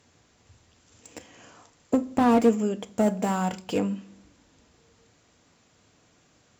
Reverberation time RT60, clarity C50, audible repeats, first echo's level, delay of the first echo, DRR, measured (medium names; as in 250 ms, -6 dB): 0.50 s, 19.5 dB, no echo, no echo, no echo, 11.5 dB